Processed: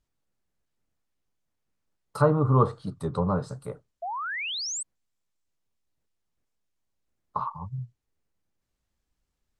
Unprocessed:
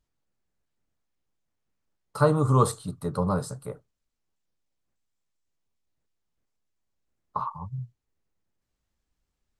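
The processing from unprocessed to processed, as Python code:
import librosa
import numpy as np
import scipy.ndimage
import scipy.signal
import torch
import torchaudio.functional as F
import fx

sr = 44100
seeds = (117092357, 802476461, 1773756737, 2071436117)

y = fx.env_lowpass_down(x, sr, base_hz=1700.0, full_db=-20.5)
y = fx.spec_paint(y, sr, seeds[0], shape='rise', start_s=4.02, length_s=0.82, low_hz=650.0, high_hz=8800.0, level_db=-32.0)
y = fx.record_warp(y, sr, rpm=33.33, depth_cents=100.0)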